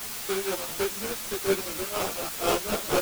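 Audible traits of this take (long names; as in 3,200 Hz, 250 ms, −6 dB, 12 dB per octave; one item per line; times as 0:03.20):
aliases and images of a low sample rate 1,900 Hz, jitter 20%
tremolo triangle 4.1 Hz, depth 95%
a quantiser's noise floor 6 bits, dither triangular
a shimmering, thickened sound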